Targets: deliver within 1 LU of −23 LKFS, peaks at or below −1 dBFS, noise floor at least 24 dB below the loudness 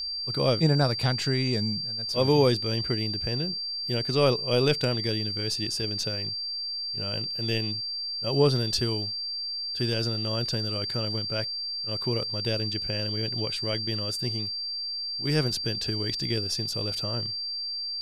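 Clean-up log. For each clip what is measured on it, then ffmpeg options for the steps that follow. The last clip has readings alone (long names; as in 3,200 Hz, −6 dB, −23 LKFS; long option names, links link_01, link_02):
interfering tone 4,700 Hz; level of the tone −30 dBFS; integrated loudness −27.0 LKFS; sample peak −9.5 dBFS; target loudness −23.0 LKFS
→ -af "bandreject=frequency=4700:width=30"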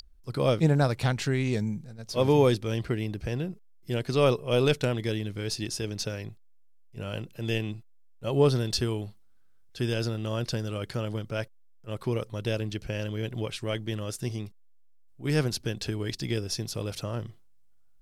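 interfering tone none found; integrated loudness −29.0 LKFS; sample peak −10.0 dBFS; target loudness −23.0 LKFS
→ -af "volume=6dB"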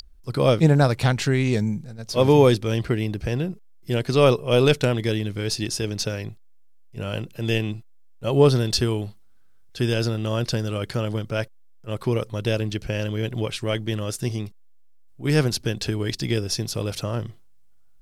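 integrated loudness −23.0 LKFS; sample peak −4.0 dBFS; background noise floor −48 dBFS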